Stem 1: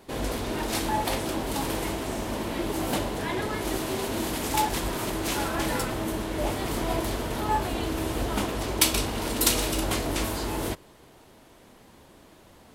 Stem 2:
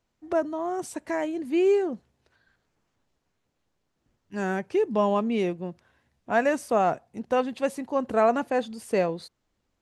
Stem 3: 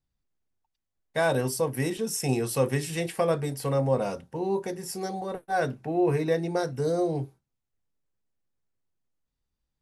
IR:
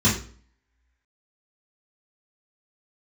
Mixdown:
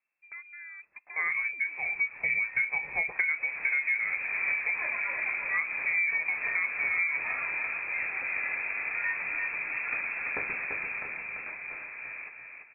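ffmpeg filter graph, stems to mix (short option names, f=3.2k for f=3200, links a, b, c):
-filter_complex "[0:a]lowshelf=f=120:t=q:w=1.5:g=-11,adelay=1550,volume=-5.5dB,afade=t=in:st=3.19:d=0.5:silence=0.237137,afade=t=out:st=10.62:d=0.47:silence=0.421697,asplit=2[a][b];[b]volume=-5dB[c];[1:a]acompressor=threshold=-30dB:ratio=5,volume=-12dB,asplit=2[d][e];[2:a]lowshelf=f=280:t=q:w=3:g=-12,volume=2dB[f];[e]apad=whole_len=433008[g];[f][g]sidechaincompress=threshold=-52dB:ratio=6:attack=16:release=161[h];[c]aecho=0:1:340|680|1020|1360|1700:1|0.38|0.144|0.0549|0.0209[i];[a][d][h][i]amix=inputs=4:normalize=0,lowpass=f=2.3k:t=q:w=0.5098,lowpass=f=2.3k:t=q:w=0.6013,lowpass=f=2.3k:t=q:w=0.9,lowpass=f=2.3k:t=q:w=2.563,afreqshift=-2700,acompressor=threshold=-25dB:ratio=12"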